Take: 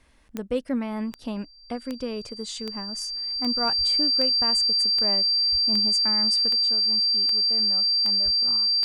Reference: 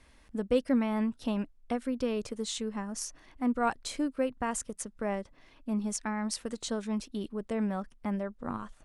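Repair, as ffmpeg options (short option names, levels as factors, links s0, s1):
-filter_complex "[0:a]adeclick=t=4,bandreject=f=4700:w=30,asplit=3[s0][s1][s2];[s0]afade=t=out:st=3.77:d=0.02[s3];[s1]highpass=f=140:w=0.5412,highpass=f=140:w=1.3066,afade=t=in:st=3.77:d=0.02,afade=t=out:st=3.89:d=0.02[s4];[s2]afade=t=in:st=3.89:d=0.02[s5];[s3][s4][s5]amix=inputs=3:normalize=0,asplit=3[s6][s7][s8];[s6]afade=t=out:st=5.51:d=0.02[s9];[s7]highpass=f=140:w=0.5412,highpass=f=140:w=1.3066,afade=t=in:st=5.51:d=0.02,afade=t=out:st=5.63:d=0.02[s10];[s8]afade=t=in:st=5.63:d=0.02[s11];[s9][s10][s11]amix=inputs=3:normalize=0,asplit=3[s12][s13][s14];[s12]afade=t=out:st=8.24:d=0.02[s15];[s13]highpass=f=140:w=0.5412,highpass=f=140:w=1.3066,afade=t=in:st=8.24:d=0.02,afade=t=out:st=8.36:d=0.02[s16];[s14]afade=t=in:st=8.36:d=0.02[s17];[s15][s16][s17]amix=inputs=3:normalize=0,asetnsamples=n=441:p=0,asendcmd='6.49 volume volume 8.5dB',volume=1"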